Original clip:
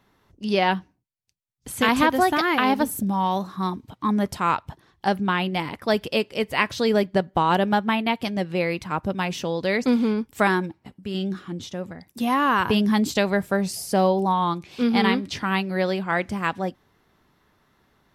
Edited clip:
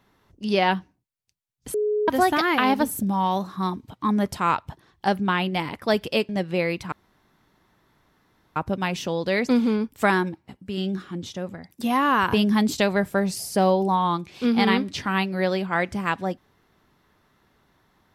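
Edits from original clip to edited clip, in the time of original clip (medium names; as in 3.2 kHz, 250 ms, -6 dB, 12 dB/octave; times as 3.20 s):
1.74–2.08 s: bleep 421 Hz -20 dBFS
6.29–8.30 s: delete
8.93 s: insert room tone 1.64 s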